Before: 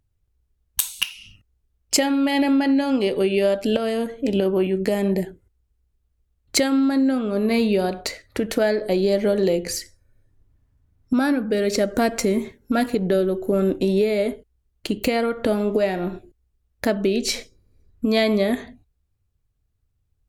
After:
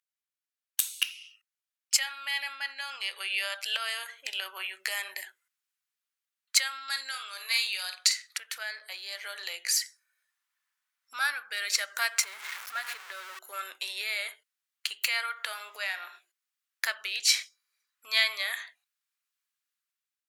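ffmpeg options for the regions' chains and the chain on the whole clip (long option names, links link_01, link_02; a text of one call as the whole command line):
ffmpeg -i in.wav -filter_complex "[0:a]asettb=1/sr,asplit=3[link_01][link_02][link_03];[link_01]atrim=end=6.884[link_04];[link_02]atrim=start=6.88:end=8.38,asetpts=PTS-STARTPTS,afade=type=in:duration=0.004:curve=qsin,afade=type=out:start_time=1.496:duration=0.004:curve=qsin,equalizer=frequency=6700:width_type=o:width=2.3:gain=13.5,asplit=2[link_05][link_06];[link_06]adelay=49,volume=-9.5dB[link_07];[link_05][link_07]amix=inputs=2:normalize=0,atrim=end_sample=66150[link_08];[link_03]atrim=start=8.376[link_09];[link_04][link_08]acrossfade=duration=0.004:curve1=hsin:curve2=qsin[link_10];[link_10][link_09]acrossfade=duration=0.004:curve1=qsin:curve2=hsin,asettb=1/sr,asplit=3[link_11][link_12][link_13];[link_11]atrim=end=12.234[link_14];[link_12]atrim=start=12.23:end=13.39,asetpts=PTS-STARTPTS,afade=type=in:duration=0.004:curve=qsin,afade=type=out:start_time=1.156:duration=0.004:curve=qsin,aeval=exprs='val(0)+0.5*0.0631*sgn(val(0))':channel_layout=same,highshelf=frequency=2400:gain=-10,acompressor=threshold=-24dB:ratio=2:attack=3.2:release=140:knee=1:detection=peak[link_15];[link_13]atrim=start=13.386[link_16];[link_14][link_15]acrossfade=duration=0.004:curve1=hsin:curve2=qsin[link_17];[link_17][link_16]acrossfade=duration=0.004:curve1=qsin:curve2=hsin,highpass=frequency=1300:width=0.5412,highpass=frequency=1300:width=1.3066,dynaudnorm=framelen=380:gausssize=5:maxgain=9.5dB,volume=-6dB" out.wav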